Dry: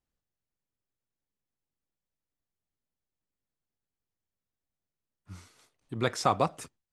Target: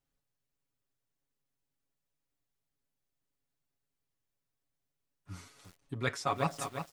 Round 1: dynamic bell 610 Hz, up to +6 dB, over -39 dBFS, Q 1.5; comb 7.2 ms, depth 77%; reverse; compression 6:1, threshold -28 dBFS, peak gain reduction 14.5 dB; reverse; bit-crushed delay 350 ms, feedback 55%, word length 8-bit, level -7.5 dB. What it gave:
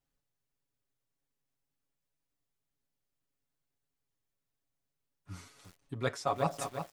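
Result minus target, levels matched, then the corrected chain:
2 kHz band -4.0 dB
dynamic bell 2.2 kHz, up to +6 dB, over -39 dBFS, Q 1.5; comb 7.2 ms, depth 77%; reverse; compression 6:1, threshold -28 dBFS, peak gain reduction 12.5 dB; reverse; bit-crushed delay 350 ms, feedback 55%, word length 8-bit, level -7.5 dB

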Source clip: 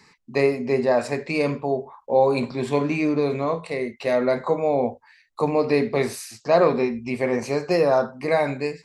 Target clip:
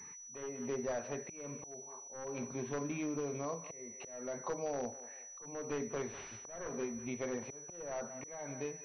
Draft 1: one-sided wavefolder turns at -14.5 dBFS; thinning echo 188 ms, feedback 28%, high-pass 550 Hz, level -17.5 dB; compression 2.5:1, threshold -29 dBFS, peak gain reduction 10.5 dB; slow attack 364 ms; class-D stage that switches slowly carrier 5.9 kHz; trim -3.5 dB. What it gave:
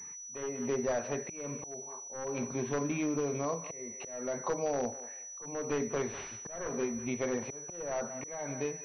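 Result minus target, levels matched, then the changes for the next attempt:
compression: peak gain reduction -5.5 dB
change: compression 2.5:1, threshold -38.5 dBFS, peak gain reduction 16 dB

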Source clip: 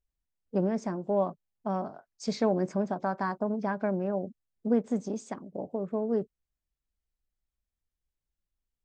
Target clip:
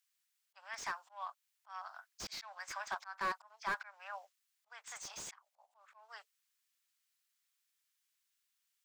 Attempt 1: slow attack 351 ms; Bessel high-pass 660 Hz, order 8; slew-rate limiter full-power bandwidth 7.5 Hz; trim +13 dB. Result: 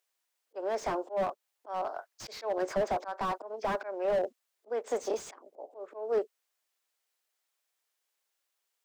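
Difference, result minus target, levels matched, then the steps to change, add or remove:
500 Hz band +14.5 dB
change: Bessel high-pass 1.8 kHz, order 8

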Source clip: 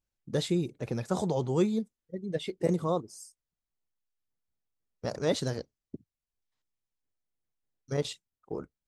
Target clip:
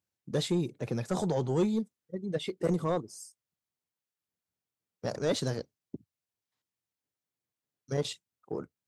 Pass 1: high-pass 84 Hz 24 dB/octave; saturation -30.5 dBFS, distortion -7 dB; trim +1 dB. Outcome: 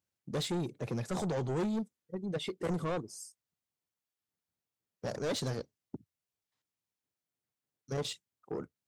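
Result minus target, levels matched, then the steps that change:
saturation: distortion +9 dB
change: saturation -21 dBFS, distortion -16 dB

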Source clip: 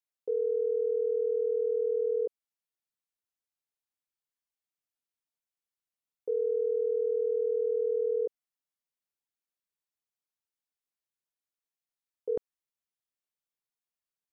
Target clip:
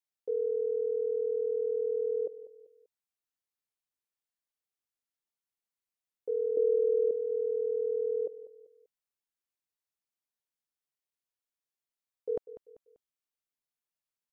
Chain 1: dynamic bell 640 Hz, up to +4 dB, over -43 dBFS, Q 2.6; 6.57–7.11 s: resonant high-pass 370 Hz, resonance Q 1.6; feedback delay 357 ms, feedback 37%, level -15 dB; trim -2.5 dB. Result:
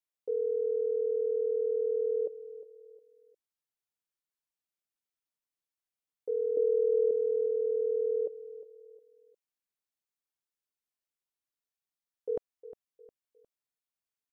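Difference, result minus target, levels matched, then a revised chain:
echo 162 ms late
dynamic bell 640 Hz, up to +4 dB, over -43 dBFS, Q 2.6; 6.57–7.11 s: resonant high-pass 370 Hz, resonance Q 1.6; feedback delay 195 ms, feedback 37%, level -15 dB; trim -2.5 dB

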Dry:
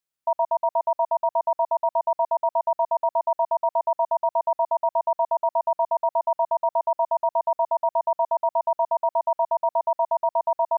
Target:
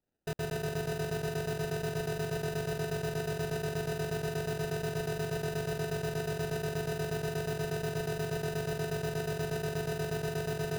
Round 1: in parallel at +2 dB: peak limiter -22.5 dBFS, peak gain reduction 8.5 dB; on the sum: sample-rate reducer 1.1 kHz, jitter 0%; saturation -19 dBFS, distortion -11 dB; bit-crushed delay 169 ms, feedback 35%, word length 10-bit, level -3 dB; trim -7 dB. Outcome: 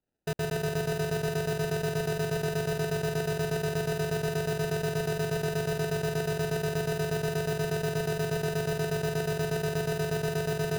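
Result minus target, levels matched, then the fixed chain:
saturation: distortion -4 dB
in parallel at +2 dB: peak limiter -22.5 dBFS, peak gain reduction 8.5 dB; on the sum: sample-rate reducer 1.1 kHz, jitter 0%; saturation -25 dBFS, distortion -7 dB; bit-crushed delay 169 ms, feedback 35%, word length 10-bit, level -3 dB; trim -7 dB

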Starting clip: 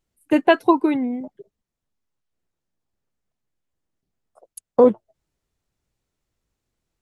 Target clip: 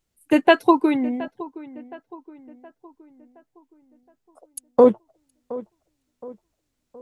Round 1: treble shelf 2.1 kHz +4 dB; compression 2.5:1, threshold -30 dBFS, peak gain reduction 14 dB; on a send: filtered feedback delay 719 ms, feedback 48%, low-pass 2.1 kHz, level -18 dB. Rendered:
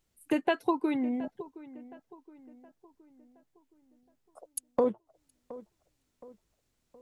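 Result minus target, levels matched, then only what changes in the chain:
compression: peak gain reduction +14 dB
remove: compression 2.5:1, threshold -30 dBFS, peak gain reduction 14 dB

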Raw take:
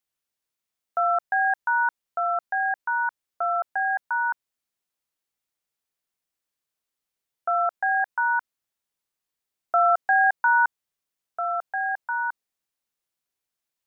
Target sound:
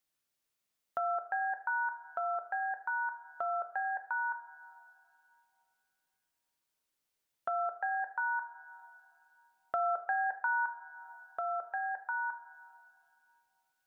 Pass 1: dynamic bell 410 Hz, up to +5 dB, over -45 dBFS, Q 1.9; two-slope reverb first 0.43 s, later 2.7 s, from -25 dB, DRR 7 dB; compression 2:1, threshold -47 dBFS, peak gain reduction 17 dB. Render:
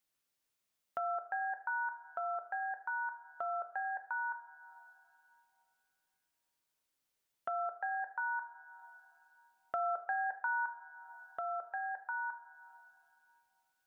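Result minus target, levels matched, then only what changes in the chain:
compression: peak gain reduction +3 dB
change: compression 2:1, threshold -40.5 dBFS, peak gain reduction 13.5 dB

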